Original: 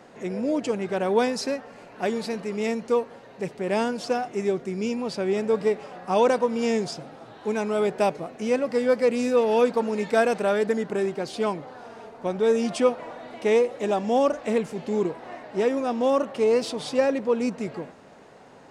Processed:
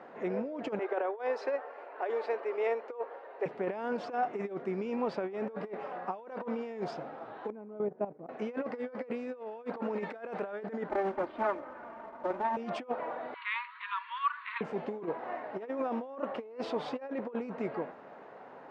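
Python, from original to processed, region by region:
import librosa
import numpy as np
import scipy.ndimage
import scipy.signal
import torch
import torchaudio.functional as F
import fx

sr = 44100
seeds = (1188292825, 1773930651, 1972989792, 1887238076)

y = fx.chain(x, sr, fx.cheby2_highpass(hz=180.0, order=4, stop_db=40),
    fx.high_shelf(hz=4500.0, db=-9.5), at=(0.79, 3.46))
y = fx.chain(y, sr, fx.bandpass_q(hz=200.0, q=1.1),
    fx.level_steps(step_db=14), at=(7.5, 8.29))
y = fx.chain(y, sr, fx.lower_of_two(delay_ms=3.3),
    fx.air_absorb(metres=440.0),
    fx.quant_float(bits=2), at=(10.89, 12.57))
y = fx.chain(y, sr, fx.brickwall_bandpass(low_hz=920.0, high_hz=4600.0),
    fx.tilt_eq(slope=2.0), at=(13.34, 14.61))
y = scipy.signal.sosfilt(scipy.signal.butter(2, 1500.0, 'lowpass', fs=sr, output='sos'), y)
y = fx.over_compress(y, sr, threshold_db=-28.0, ratio=-0.5)
y = fx.highpass(y, sr, hz=670.0, slope=6)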